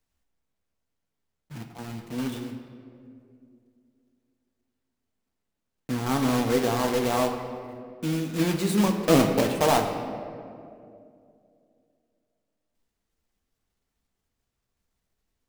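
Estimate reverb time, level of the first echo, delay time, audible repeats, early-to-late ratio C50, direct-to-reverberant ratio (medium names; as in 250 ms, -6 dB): 2.5 s, no echo, no echo, no echo, 6.5 dB, 4.0 dB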